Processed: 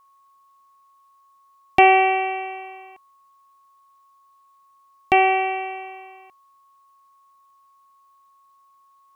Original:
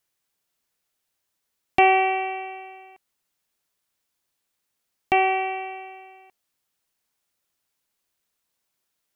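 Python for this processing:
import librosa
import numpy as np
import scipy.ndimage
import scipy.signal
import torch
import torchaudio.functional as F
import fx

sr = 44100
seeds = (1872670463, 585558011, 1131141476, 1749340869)

y = x + 10.0 ** (-58.0 / 20.0) * np.sin(2.0 * np.pi * 1100.0 * np.arange(len(x)) / sr)
y = F.gain(torch.from_numpy(y), 3.5).numpy()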